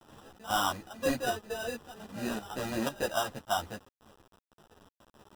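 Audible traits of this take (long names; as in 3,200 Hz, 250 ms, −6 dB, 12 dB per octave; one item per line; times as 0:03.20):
aliases and images of a low sample rate 2,200 Hz, jitter 0%
chopped level 2 Hz, depth 60%, duty 75%
a quantiser's noise floor 8 bits, dither none
a shimmering, thickened sound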